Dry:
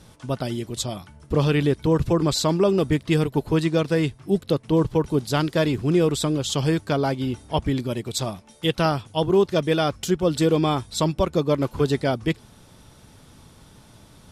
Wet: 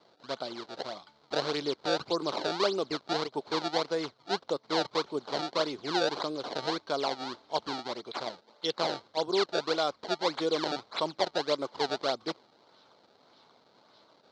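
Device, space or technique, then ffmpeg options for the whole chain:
circuit-bent sampling toy: -af "acrusher=samples=24:mix=1:aa=0.000001:lfo=1:lforange=38.4:lforate=1.7,highpass=490,equalizer=frequency=1800:width_type=q:width=4:gain=-8,equalizer=frequency=2600:width_type=q:width=4:gain=-9,equalizer=frequency=4200:width_type=q:width=4:gain=9,lowpass=frequency=5100:width=0.5412,lowpass=frequency=5100:width=1.3066,volume=-4.5dB"

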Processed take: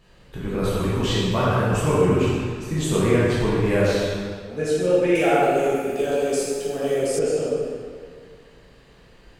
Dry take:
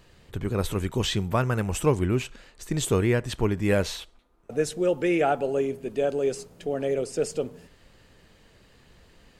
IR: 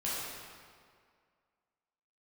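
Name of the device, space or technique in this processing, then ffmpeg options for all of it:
swimming-pool hall: -filter_complex "[1:a]atrim=start_sample=2205[link_01];[0:a][link_01]afir=irnorm=-1:irlink=0,highshelf=frequency=5500:gain=-5,asettb=1/sr,asplit=3[link_02][link_03][link_04];[link_02]atrim=end=5.154[link_05];[link_03]atrim=start=5.15:end=7.19,asetpts=PTS-STARTPTS,afade=type=in:duration=0.004:curve=qsin,afade=type=out:start_time=2.036:duration=0.004:curve=qsin,aemphasis=mode=production:type=75fm[link_06];[link_04]atrim=start=7.186[link_07];[link_05][link_06]acrossfade=duration=0.004:curve1=hsin:curve2=qsin[link_08];[link_08][link_07]acrossfade=duration=0.004:curve1=qsin:curve2=hsin"

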